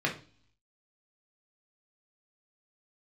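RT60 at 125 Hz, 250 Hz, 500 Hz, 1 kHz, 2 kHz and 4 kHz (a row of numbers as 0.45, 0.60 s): 0.80, 0.65, 0.40, 0.40, 0.40, 0.60 s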